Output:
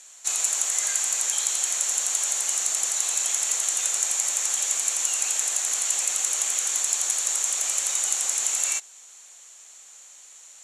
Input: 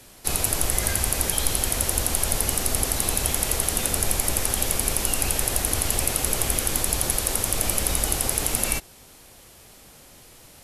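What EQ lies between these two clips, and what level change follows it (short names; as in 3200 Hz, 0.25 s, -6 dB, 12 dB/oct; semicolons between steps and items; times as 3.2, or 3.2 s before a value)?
HPF 970 Hz 12 dB/oct; synth low-pass 7100 Hz, resonance Q 8.1; notch 5000 Hz, Q 6.2; -4.0 dB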